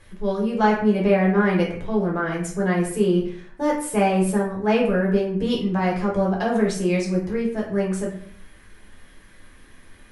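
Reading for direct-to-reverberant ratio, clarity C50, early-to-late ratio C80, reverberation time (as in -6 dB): -3.5 dB, 5.5 dB, 9.0 dB, 0.55 s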